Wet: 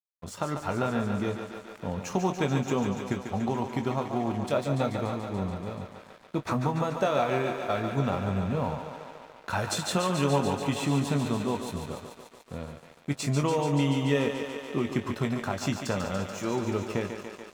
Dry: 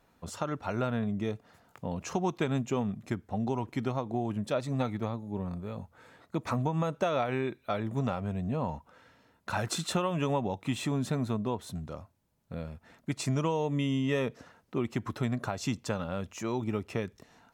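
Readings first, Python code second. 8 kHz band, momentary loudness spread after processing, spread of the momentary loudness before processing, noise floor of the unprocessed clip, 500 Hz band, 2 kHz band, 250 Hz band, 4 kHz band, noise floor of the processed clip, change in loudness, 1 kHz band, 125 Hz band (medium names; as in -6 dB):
+4.0 dB, 14 LU, 12 LU, -68 dBFS, +4.0 dB, +4.5 dB, +3.0 dB, +4.5 dB, -53 dBFS, +3.5 dB, +4.5 dB, +3.0 dB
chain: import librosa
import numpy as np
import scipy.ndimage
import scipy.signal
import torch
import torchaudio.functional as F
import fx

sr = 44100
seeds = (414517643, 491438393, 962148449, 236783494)

y = fx.doubler(x, sr, ms=21.0, db=-8.5)
y = fx.echo_thinned(y, sr, ms=144, feedback_pct=81, hz=200.0, wet_db=-7.0)
y = np.sign(y) * np.maximum(np.abs(y) - 10.0 ** (-50.5 / 20.0), 0.0)
y = F.gain(torch.from_numpy(y), 2.5).numpy()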